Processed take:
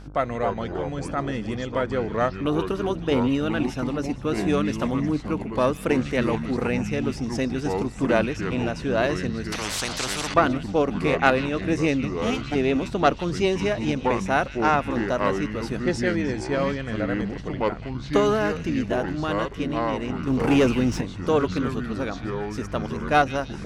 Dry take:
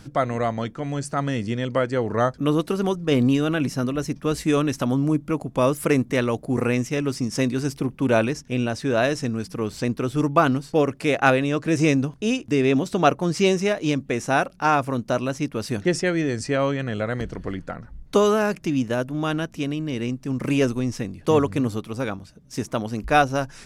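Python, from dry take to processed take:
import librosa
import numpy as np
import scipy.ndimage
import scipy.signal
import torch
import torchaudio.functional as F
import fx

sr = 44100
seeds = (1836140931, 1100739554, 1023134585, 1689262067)

p1 = fx.lower_of_two(x, sr, delay_ms=0.88, at=(12.12, 12.54), fade=0.02)
p2 = fx.high_shelf(p1, sr, hz=6700.0, db=-11.5)
p3 = fx.cheby_harmonics(p2, sr, harmonics=(2,), levels_db=(-11,), full_scale_db=-4.0)
p4 = fx.low_shelf(p3, sr, hz=140.0, db=-7.5)
p5 = fx.dmg_buzz(p4, sr, base_hz=50.0, harmonics=31, level_db=-41.0, tilt_db=-7, odd_only=False)
p6 = p5 + fx.echo_stepped(p5, sr, ms=154, hz=2900.0, octaves=0.7, feedback_pct=70, wet_db=-9, dry=0)
p7 = fx.leveller(p6, sr, passes=2, at=(20.27, 21.01))
p8 = fx.echo_pitch(p7, sr, ms=214, semitones=-5, count=3, db_per_echo=-6.0)
p9 = fx.spectral_comp(p8, sr, ratio=4.0, at=(9.52, 10.34))
y = p9 * 10.0 ** (-1.5 / 20.0)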